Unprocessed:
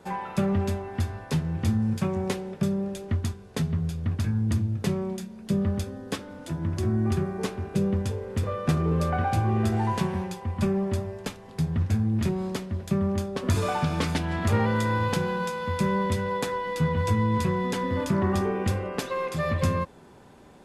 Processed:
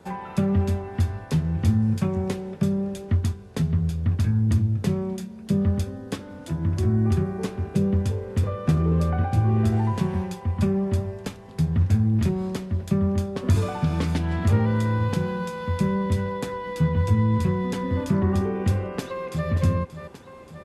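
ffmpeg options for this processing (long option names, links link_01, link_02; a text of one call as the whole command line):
ffmpeg -i in.wav -filter_complex "[0:a]asplit=2[link_01][link_02];[link_02]afade=type=in:start_time=18.83:duration=0.01,afade=type=out:start_time=19.49:duration=0.01,aecho=0:1:580|1160|1740|2320|2900|3480|4060:0.237137|0.142282|0.0853695|0.0512217|0.030733|0.0184398|0.0110639[link_03];[link_01][link_03]amix=inputs=2:normalize=0,equalizer=frequency=67:width=0.38:gain=12,acrossover=split=440[link_04][link_05];[link_05]acompressor=threshold=-33dB:ratio=2.5[link_06];[link_04][link_06]amix=inputs=2:normalize=0,lowshelf=frequency=160:gain=-8" out.wav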